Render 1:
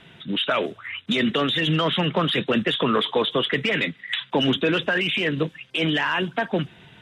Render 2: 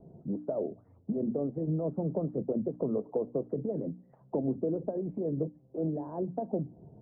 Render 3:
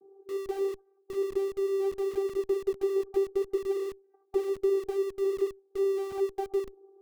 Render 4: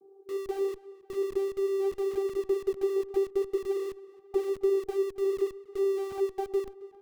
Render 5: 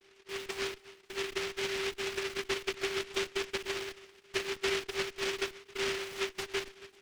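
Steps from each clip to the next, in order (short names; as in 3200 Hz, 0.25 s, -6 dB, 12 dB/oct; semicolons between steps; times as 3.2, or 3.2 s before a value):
steep low-pass 680 Hz 36 dB/oct; notches 60/120/180/240/300 Hz; compressor 2:1, threshold -34 dBFS, peak gain reduction 9.5 dB
tilt -1.5 dB/oct; vocoder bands 16, saw 391 Hz; in parallel at -11.5 dB: Schmitt trigger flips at -42.5 dBFS
tape echo 0.271 s, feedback 57%, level -18.5 dB, low-pass 3500 Hz
noise-modulated delay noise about 2200 Hz, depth 0.33 ms; gain -6.5 dB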